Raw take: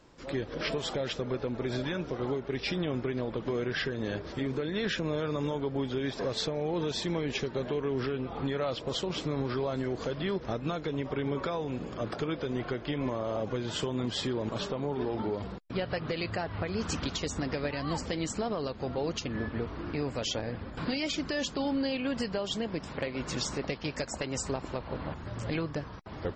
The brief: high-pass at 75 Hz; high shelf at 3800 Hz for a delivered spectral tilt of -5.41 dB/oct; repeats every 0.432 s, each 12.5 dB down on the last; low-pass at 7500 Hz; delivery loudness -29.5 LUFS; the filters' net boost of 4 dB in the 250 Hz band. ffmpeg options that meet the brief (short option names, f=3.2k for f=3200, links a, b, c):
-af "highpass=75,lowpass=7.5k,equalizer=f=250:t=o:g=5,highshelf=f=3.8k:g=-4,aecho=1:1:432|864|1296:0.237|0.0569|0.0137,volume=2dB"